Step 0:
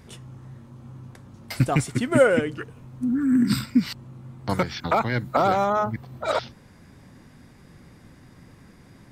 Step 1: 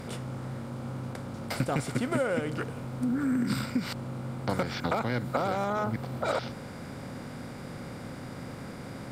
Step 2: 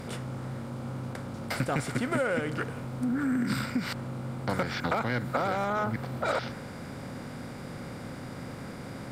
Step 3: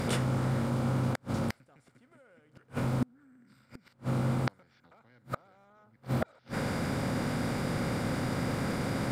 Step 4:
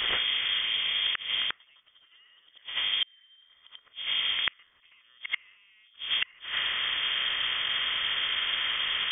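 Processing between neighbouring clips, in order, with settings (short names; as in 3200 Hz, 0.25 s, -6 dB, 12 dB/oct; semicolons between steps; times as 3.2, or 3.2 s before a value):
per-bin compression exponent 0.6; compressor 6:1, threshold -18 dBFS, peak gain reduction 8.5 dB; gain -6.5 dB
dynamic EQ 1700 Hz, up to +5 dB, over -49 dBFS, Q 1.6; in parallel at -6 dB: soft clip -27 dBFS, distortion -11 dB; on the sum: gain -3 dB
reverse; upward compressor, threshold -34 dBFS; reverse; flipped gate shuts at -25 dBFS, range -39 dB; gain +7 dB
reverse echo 88 ms -8 dB; dynamic EQ 1500 Hz, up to +7 dB, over -52 dBFS, Q 0.94; inverted band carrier 3400 Hz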